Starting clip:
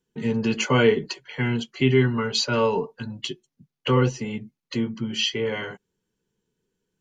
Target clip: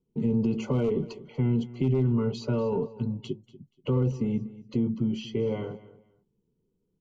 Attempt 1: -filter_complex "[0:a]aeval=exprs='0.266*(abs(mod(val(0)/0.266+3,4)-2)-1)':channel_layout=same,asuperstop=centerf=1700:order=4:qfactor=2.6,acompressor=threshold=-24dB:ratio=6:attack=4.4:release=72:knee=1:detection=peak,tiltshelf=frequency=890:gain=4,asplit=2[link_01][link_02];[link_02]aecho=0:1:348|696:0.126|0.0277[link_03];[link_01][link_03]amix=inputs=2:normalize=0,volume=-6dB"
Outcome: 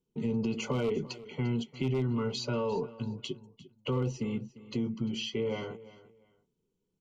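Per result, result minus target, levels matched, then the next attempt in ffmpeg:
echo 108 ms late; 1,000 Hz band +5.5 dB
-filter_complex "[0:a]aeval=exprs='0.266*(abs(mod(val(0)/0.266+3,4)-2)-1)':channel_layout=same,asuperstop=centerf=1700:order=4:qfactor=2.6,acompressor=threshold=-24dB:ratio=6:attack=4.4:release=72:knee=1:detection=peak,tiltshelf=frequency=890:gain=4,asplit=2[link_01][link_02];[link_02]aecho=0:1:240|480:0.126|0.0277[link_03];[link_01][link_03]amix=inputs=2:normalize=0,volume=-6dB"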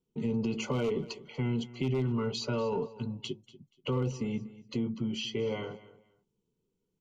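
1,000 Hz band +5.5 dB
-filter_complex "[0:a]aeval=exprs='0.266*(abs(mod(val(0)/0.266+3,4)-2)-1)':channel_layout=same,asuperstop=centerf=1700:order=4:qfactor=2.6,acompressor=threshold=-24dB:ratio=6:attack=4.4:release=72:knee=1:detection=peak,tiltshelf=frequency=890:gain=11,asplit=2[link_01][link_02];[link_02]aecho=0:1:240|480:0.126|0.0277[link_03];[link_01][link_03]amix=inputs=2:normalize=0,volume=-6dB"

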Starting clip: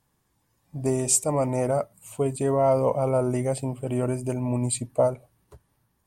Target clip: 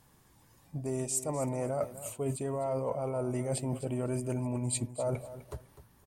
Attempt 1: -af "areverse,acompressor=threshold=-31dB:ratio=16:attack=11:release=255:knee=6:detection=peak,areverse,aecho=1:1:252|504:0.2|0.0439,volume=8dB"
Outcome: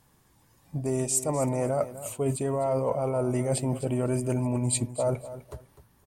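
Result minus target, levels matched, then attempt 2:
downward compressor: peak gain reduction −6 dB
-af "areverse,acompressor=threshold=-37.5dB:ratio=16:attack=11:release=255:knee=6:detection=peak,areverse,aecho=1:1:252|504:0.2|0.0439,volume=8dB"

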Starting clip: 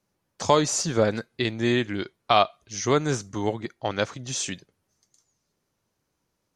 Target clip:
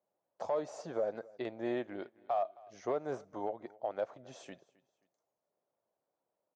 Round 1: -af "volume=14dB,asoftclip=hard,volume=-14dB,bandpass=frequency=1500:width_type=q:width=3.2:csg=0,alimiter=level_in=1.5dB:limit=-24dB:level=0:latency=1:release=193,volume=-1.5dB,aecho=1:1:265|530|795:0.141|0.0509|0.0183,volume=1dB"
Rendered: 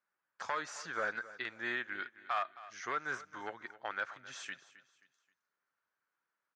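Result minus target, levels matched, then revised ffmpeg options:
2,000 Hz band +16.5 dB; echo-to-direct +6 dB
-af "volume=14dB,asoftclip=hard,volume=-14dB,bandpass=frequency=640:width_type=q:width=3.2:csg=0,alimiter=level_in=1.5dB:limit=-24dB:level=0:latency=1:release=193,volume=-1.5dB,aecho=1:1:265|530:0.0708|0.0255,volume=1dB"

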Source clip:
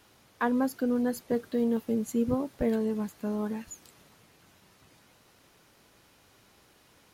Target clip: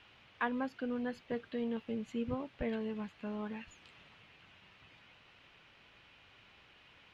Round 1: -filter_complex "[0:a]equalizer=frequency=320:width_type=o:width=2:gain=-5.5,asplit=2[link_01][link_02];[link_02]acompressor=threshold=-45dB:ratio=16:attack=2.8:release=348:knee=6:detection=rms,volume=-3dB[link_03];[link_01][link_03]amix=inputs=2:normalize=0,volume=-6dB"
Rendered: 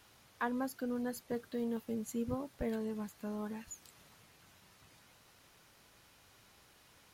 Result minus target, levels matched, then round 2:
2,000 Hz band −3.0 dB
-filter_complex "[0:a]lowpass=frequency=2800:width_type=q:width=2.7,equalizer=frequency=320:width_type=o:width=2:gain=-5.5,asplit=2[link_01][link_02];[link_02]acompressor=threshold=-45dB:ratio=16:attack=2.8:release=348:knee=6:detection=rms,volume=-3dB[link_03];[link_01][link_03]amix=inputs=2:normalize=0,volume=-6dB"

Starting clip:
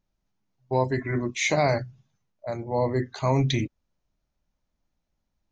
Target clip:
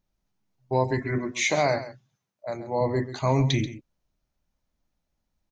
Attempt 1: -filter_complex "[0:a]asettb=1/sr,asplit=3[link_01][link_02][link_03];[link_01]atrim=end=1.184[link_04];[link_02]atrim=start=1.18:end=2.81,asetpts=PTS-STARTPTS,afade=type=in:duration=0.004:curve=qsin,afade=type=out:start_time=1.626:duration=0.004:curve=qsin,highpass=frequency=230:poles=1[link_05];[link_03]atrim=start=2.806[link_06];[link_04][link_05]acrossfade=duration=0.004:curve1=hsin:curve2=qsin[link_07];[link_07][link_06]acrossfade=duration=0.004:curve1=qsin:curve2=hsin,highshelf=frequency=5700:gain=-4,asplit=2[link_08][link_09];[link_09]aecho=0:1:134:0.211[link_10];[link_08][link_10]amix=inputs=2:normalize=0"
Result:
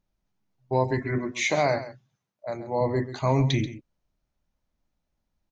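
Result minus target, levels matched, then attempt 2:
8,000 Hz band −3.0 dB
-filter_complex "[0:a]asettb=1/sr,asplit=3[link_01][link_02][link_03];[link_01]atrim=end=1.184[link_04];[link_02]atrim=start=1.18:end=2.81,asetpts=PTS-STARTPTS,afade=type=in:duration=0.004:curve=qsin,afade=type=out:start_time=1.626:duration=0.004:curve=qsin,highpass=frequency=230:poles=1[link_05];[link_03]atrim=start=2.806[link_06];[link_04][link_05]acrossfade=duration=0.004:curve1=hsin:curve2=qsin[link_07];[link_07][link_06]acrossfade=duration=0.004:curve1=qsin:curve2=hsin,highshelf=frequency=5700:gain=2,asplit=2[link_08][link_09];[link_09]aecho=0:1:134:0.211[link_10];[link_08][link_10]amix=inputs=2:normalize=0"

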